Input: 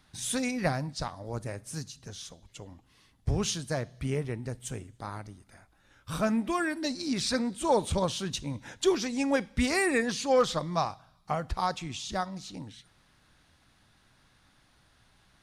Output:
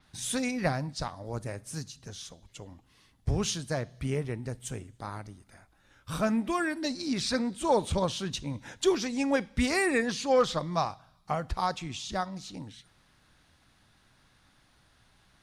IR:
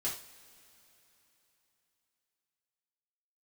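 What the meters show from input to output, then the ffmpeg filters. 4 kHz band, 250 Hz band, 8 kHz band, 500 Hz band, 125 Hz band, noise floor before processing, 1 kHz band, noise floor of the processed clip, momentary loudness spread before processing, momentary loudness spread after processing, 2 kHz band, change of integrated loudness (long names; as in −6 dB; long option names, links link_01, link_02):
−0.5 dB, 0.0 dB, −1.0 dB, 0.0 dB, 0.0 dB, −65 dBFS, 0.0 dB, −65 dBFS, 16 LU, 16 LU, 0.0 dB, 0.0 dB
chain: -af "adynamicequalizer=threshold=0.00398:dfrequency=6500:dqfactor=0.7:tfrequency=6500:tqfactor=0.7:attack=5:release=100:ratio=0.375:range=2.5:mode=cutabove:tftype=highshelf"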